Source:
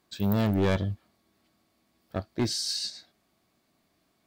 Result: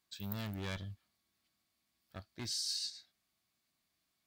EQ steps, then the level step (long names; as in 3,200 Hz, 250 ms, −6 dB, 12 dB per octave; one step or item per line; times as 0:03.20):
guitar amp tone stack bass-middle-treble 5-5-5
0.0 dB